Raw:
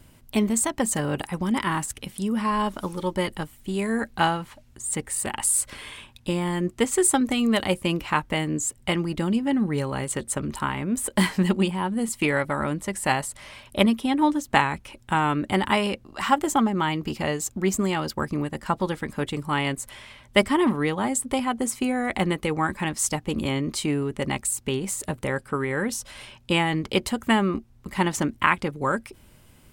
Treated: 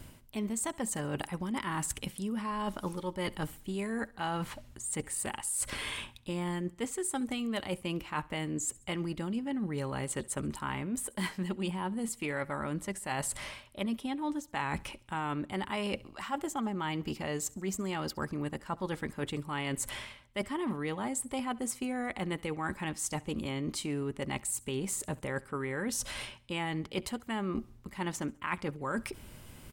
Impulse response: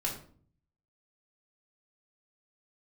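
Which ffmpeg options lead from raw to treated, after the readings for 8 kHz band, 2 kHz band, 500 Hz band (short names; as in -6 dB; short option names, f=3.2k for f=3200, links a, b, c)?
-8.5 dB, -11.0 dB, -10.5 dB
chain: -af "areverse,acompressor=threshold=-35dB:ratio=8,areverse,aecho=1:1:68|136|204:0.0708|0.0326|0.015,volume=3dB"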